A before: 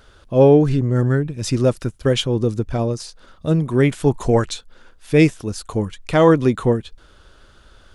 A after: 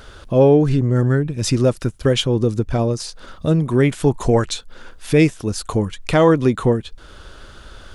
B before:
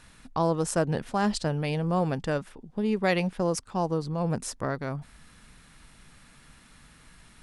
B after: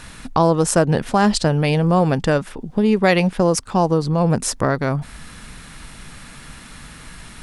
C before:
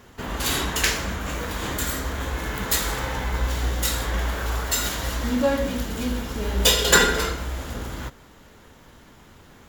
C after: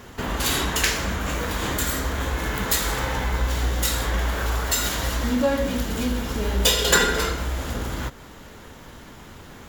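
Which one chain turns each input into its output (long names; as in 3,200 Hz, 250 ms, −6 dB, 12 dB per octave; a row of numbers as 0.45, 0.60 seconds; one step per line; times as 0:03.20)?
downward compressor 1.5 to 1, threshold −36 dBFS
normalise the peak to −2 dBFS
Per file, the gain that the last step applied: +9.0, +15.0, +6.5 decibels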